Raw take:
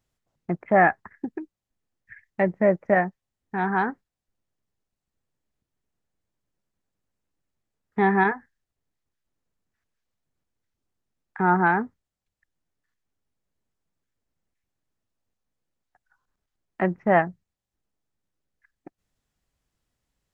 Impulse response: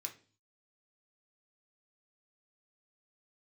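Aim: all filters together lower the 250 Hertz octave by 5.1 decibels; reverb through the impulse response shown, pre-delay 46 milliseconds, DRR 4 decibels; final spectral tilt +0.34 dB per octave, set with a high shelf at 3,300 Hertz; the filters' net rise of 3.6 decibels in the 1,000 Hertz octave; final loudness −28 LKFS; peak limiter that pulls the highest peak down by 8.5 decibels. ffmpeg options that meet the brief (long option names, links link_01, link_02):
-filter_complex "[0:a]equalizer=frequency=250:width_type=o:gain=-8.5,equalizer=frequency=1000:width_type=o:gain=5,highshelf=frequency=3300:gain=7.5,alimiter=limit=-12dB:level=0:latency=1,asplit=2[link_01][link_02];[1:a]atrim=start_sample=2205,adelay=46[link_03];[link_02][link_03]afir=irnorm=-1:irlink=0,volume=-1.5dB[link_04];[link_01][link_04]amix=inputs=2:normalize=0,volume=-4dB"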